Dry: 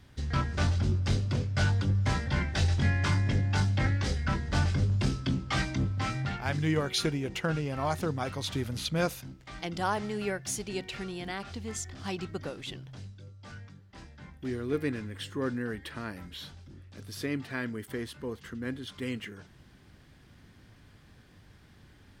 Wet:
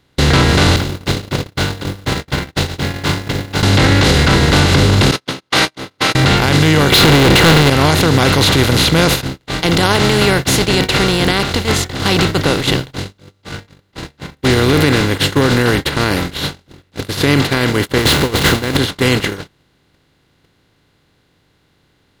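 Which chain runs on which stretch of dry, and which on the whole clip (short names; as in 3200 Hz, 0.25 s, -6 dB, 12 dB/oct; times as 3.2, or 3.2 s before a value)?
0.76–3.63 G.711 law mismatch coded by A + expander -25 dBFS + compressor 12:1, threshold -38 dBFS
5.11–6.15 gate -32 dBFS, range -19 dB + HPF 740 Hz + notch 7500 Hz, Q 5.5
6.92–7.7 LPF 4500 Hz 24 dB/oct + sample leveller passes 5
17.98–18.77 zero-crossing step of -41 dBFS + negative-ratio compressor -38 dBFS
whole clip: per-bin compression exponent 0.4; gate -24 dBFS, range -42 dB; maximiser +16 dB; gain -1 dB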